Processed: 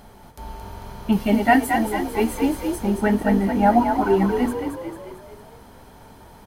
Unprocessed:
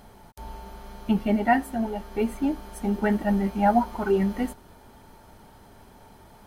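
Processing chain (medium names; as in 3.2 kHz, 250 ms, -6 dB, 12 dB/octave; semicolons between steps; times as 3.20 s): 1.12–2.76 s: treble shelf 3.1 kHz +9 dB; on a send: frequency-shifting echo 223 ms, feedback 52%, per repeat +43 Hz, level -6 dB; on the sum: trim +3.5 dB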